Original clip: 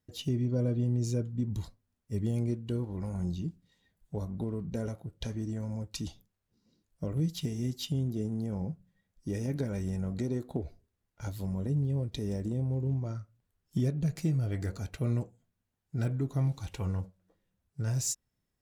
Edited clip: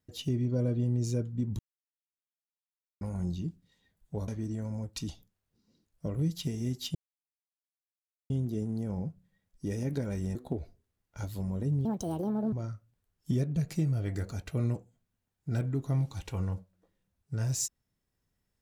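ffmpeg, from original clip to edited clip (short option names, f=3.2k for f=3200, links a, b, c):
-filter_complex "[0:a]asplit=8[a][b][c][d][e][f][g][h];[a]atrim=end=1.59,asetpts=PTS-STARTPTS,afade=t=out:st=1.586:d=0.004:c=hsin[i];[b]atrim=start=1.59:end=3.01,asetpts=PTS-STARTPTS,volume=0[j];[c]atrim=start=3.01:end=4.282,asetpts=PTS-STARTPTS,afade=t=in:d=0.004:c=hsin[k];[d]atrim=start=5.258:end=7.93,asetpts=PTS-STARTPTS,afade=t=out:st=2.668:d=0.004:c=hsin,apad=pad_dur=1.35[l];[e]atrim=start=7.93:end=9.982,asetpts=PTS-STARTPTS,afade=t=in:d=0.004:c=hsin[m];[f]atrim=start=10.388:end=11.894[n];[g]atrim=start=11.89:end=12.99,asetpts=PTS-STARTPTS,asetrate=71883,aresample=44100[o];[h]atrim=start=12.986[p];[i][j][k]concat=n=3:v=0:a=1[q];[l][m]concat=n=2:v=0:a=1[r];[q][r]acrossfade=d=0.004:c1=hsin:c2=hsin[s];[s][n]acrossfade=d=0.004:c1=hsin:c2=hsin[t];[t][o]acrossfade=d=0.004:c1=hsin:c2=hsin[u];[u][p]acrossfade=d=0.004:c1=hsin:c2=hsin"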